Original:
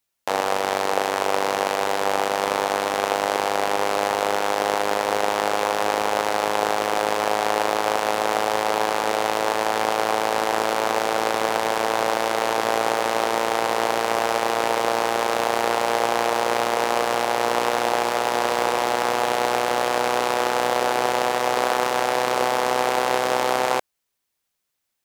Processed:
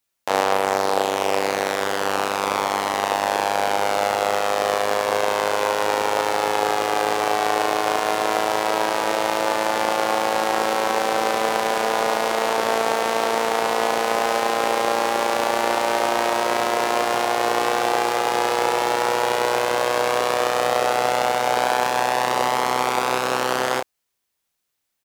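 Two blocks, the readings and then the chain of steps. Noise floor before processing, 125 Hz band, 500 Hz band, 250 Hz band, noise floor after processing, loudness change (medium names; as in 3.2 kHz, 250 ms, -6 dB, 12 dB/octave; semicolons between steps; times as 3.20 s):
-78 dBFS, +1.0 dB, +1.0 dB, +1.0 dB, -77 dBFS, +1.0 dB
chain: doubling 31 ms -5.5 dB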